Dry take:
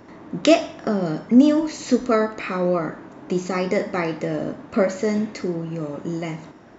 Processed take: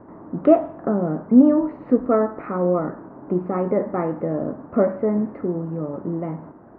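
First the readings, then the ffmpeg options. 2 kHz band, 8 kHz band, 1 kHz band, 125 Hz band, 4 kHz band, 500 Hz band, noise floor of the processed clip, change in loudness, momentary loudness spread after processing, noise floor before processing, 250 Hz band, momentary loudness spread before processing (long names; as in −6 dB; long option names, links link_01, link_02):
−11.0 dB, can't be measured, 0.0 dB, +1.0 dB, below −30 dB, +1.0 dB, −44 dBFS, +1.0 dB, 12 LU, −44 dBFS, +1.0 dB, 12 LU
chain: -af "lowpass=frequency=1300:width=0.5412,lowpass=frequency=1300:width=1.3066,volume=1dB"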